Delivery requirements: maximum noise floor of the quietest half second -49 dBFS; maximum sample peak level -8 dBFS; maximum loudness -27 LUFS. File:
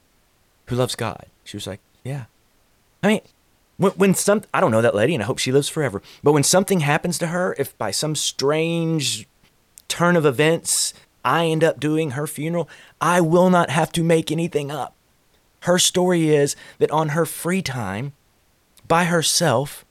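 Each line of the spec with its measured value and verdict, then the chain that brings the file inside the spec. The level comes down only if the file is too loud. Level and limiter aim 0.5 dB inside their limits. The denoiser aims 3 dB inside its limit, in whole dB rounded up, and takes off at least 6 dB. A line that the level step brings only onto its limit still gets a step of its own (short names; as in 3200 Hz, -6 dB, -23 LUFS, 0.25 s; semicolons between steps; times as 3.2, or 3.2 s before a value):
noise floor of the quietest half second -61 dBFS: OK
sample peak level -5.5 dBFS: fail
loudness -20.0 LUFS: fail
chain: gain -7.5 dB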